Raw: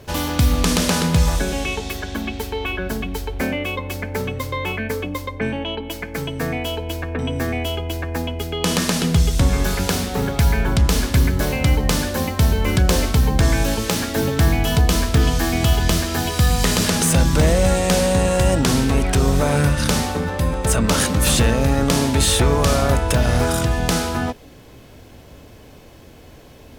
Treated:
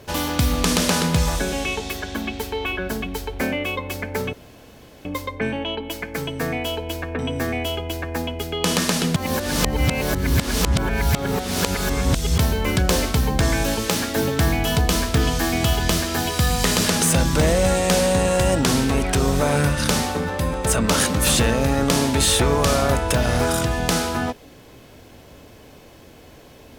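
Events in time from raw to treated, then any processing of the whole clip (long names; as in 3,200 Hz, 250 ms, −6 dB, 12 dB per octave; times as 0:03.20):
0:04.33–0:05.05: fill with room tone
0:09.16–0:12.38: reverse
whole clip: low-shelf EQ 140 Hz −6 dB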